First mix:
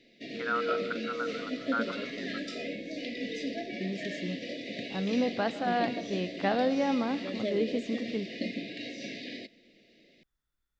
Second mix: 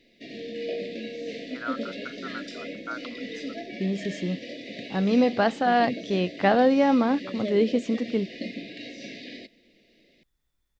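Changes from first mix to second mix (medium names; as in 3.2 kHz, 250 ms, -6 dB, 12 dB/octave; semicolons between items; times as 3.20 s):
first voice: entry +1.15 s; second voice +9.5 dB; reverb: off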